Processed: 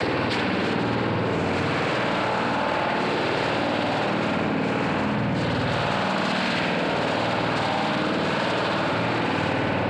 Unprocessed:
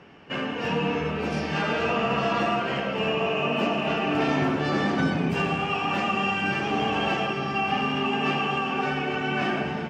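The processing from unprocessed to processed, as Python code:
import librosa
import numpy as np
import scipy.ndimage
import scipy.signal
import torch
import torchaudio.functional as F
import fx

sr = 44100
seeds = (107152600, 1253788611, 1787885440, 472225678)

y = fx.high_shelf(x, sr, hz=3500.0, db=-6.5)
y = 10.0 ** (-29.5 / 20.0) * np.tanh(y / 10.0 ** (-29.5 / 20.0))
y = fx.noise_vocoder(y, sr, seeds[0], bands=8)
y = y + 10.0 ** (-7.5 / 20.0) * np.pad(y, (int(207 * sr / 1000.0), 0))[:len(y)]
y = fx.rev_spring(y, sr, rt60_s=1.3, pass_ms=(52,), chirp_ms=25, drr_db=-5.0)
y = fx.env_flatten(y, sr, amount_pct=100)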